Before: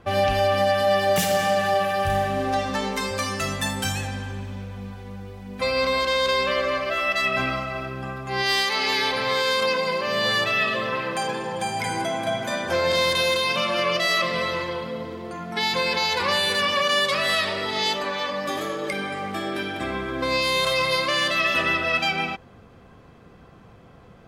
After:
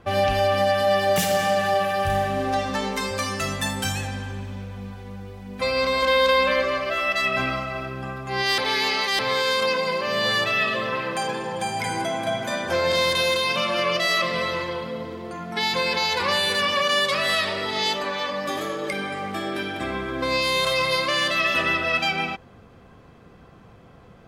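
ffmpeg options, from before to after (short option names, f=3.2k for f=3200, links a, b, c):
-filter_complex "[0:a]asettb=1/sr,asplit=3[a][b][c];[a]atrim=end=6.024[d];[b]atrim=start=6.02:end=6.63,asetpts=PTS-STARTPTS,afade=t=in:d=0.004:c=qsin,afade=t=out:st=0.606:d=0.004:c=qsin,aecho=1:1:3.9:0.65,atrim=end_sample=26901[e];[c]atrim=start=6.626[f];[d][e]acrossfade=d=0.004:c1=hsin:c2=qsin[g];[g][f]acrossfade=d=0.004:c1=qsin:c2=hsin,asplit=3[h][i][j];[h]atrim=end=8.582[k];[i]atrim=start=8.578:end=9.192,asetpts=PTS-STARTPTS,areverse[l];[j]atrim=start=9.188[m];[k][l]acrossfade=d=0.004:c1=hsin:c2=hsin[n];[n][m]acrossfade=d=0.004:c1=hsin:c2=hsin"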